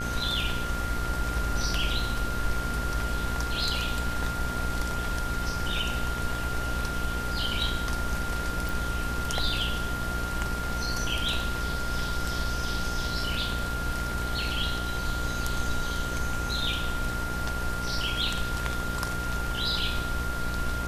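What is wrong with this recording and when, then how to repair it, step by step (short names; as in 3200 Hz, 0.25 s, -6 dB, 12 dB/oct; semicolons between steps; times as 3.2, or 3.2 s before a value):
buzz 60 Hz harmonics 35 -34 dBFS
tone 1400 Hz -33 dBFS
8.69 pop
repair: de-click; de-hum 60 Hz, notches 35; notch 1400 Hz, Q 30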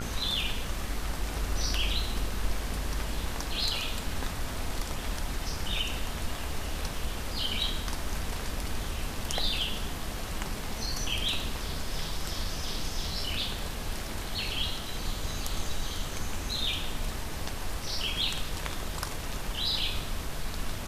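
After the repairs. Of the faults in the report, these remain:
none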